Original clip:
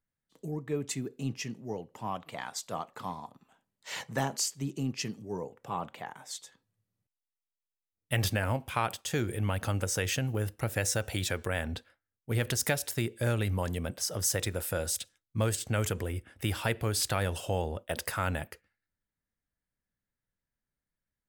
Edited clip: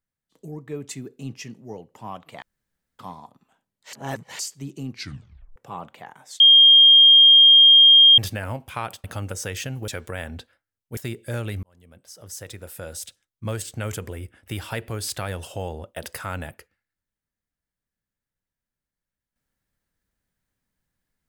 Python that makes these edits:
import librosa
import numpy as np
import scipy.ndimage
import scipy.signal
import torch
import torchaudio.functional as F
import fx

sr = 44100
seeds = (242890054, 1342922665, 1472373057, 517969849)

y = fx.edit(x, sr, fx.room_tone_fill(start_s=2.42, length_s=0.57),
    fx.reverse_span(start_s=3.93, length_s=0.46),
    fx.tape_stop(start_s=4.9, length_s=0.66),
    fx.bleep(start_s=6.4, length_s=1.78, hz=3220.0, db=-8.0),
    fx.cut(start_s=9.04, length_s=0.52),
    fx.cut(start_s=10.4, length_s=0.85),
    fx.cut(start_s=12.34, length_s=0.56),
    fx.fade_in_span(start_s=13.56, length_s=1.88), tone=tone)